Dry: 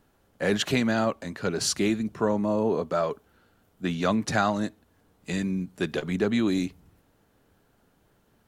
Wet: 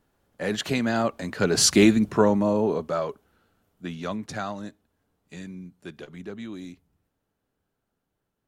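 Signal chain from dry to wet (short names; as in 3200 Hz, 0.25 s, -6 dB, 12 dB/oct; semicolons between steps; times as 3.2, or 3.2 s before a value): Doppler pass-by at 1.85, 8 m/s, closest 3.1 m; gain +8.5 dB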